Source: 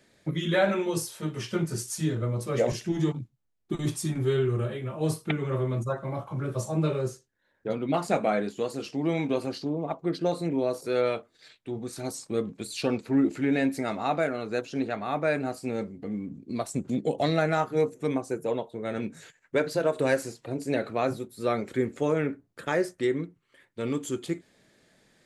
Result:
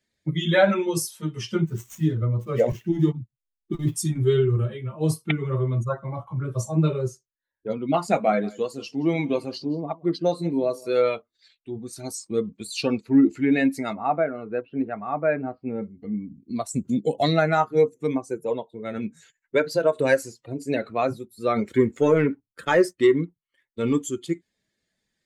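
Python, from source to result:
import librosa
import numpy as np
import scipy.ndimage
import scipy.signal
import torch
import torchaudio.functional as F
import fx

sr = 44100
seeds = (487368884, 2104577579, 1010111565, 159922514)

y = fx.median_filter(x, sr, points=9, at=(1.61, 3.96))
y = fx.echo_single(y, sr, ms=173, db=-15.5, at=(8.09, 11.03))
y = fx.gaussian_blur(y, sr, sigma=3.4, at=(13.93, 15.83))
y = fx.high_shelf(y, sr, hz=9400.0, db=11.0, at=(16.73, 17.32))
y = fx.leveller(y, sr, passes=1, at=(21.56, 24.02))
y = fx.bin_expand(y, sr, power=1.5)
y = y * 10.0 ** (7.5 / 20.0)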